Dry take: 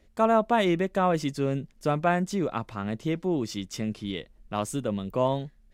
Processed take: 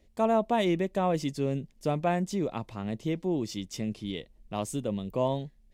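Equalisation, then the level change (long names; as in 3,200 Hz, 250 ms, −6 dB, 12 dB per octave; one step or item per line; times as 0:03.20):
parametric band 1,400 Hz −9.5 dB 0.68 octaves
−2.0 dB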